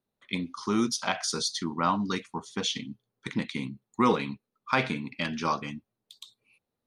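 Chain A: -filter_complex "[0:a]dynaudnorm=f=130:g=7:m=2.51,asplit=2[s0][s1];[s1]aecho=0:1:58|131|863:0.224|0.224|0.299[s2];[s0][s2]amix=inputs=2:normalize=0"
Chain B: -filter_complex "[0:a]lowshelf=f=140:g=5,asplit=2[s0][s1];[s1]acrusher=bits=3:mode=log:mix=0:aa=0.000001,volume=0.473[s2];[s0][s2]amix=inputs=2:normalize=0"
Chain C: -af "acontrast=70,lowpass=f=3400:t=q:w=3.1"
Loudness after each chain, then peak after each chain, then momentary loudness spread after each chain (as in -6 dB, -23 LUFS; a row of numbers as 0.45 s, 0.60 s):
-22.5 LUFS, -26.0 LUFS, -21.0 LUFS; -3.0 dBFS, -7.0 dBFS, -1.0 dBFS; 13 LU, 12 LU, 17 LU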